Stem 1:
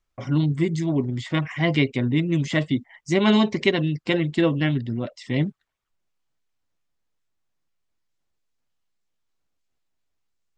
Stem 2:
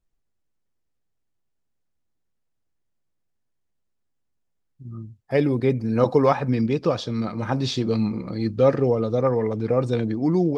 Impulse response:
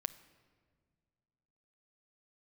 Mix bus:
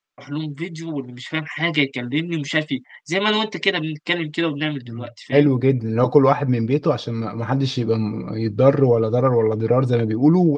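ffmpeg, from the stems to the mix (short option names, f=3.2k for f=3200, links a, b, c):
-filter_complex "[0:a]highpass=190,tiltshelf=f=1.1k:g=-5,volume=-0.5dB[a];[1:a]agate=range=-33dB:threshold=-32dB:ratio=3:detection=peak,volume=1.5dB[b];[a][b]amix=inputs=2:normalize=0,highshelf=f=6.5k:g=-11.5,aecho=1:1:6.8:0.39,dynaudnorm=f=870:g=3:m=6dB"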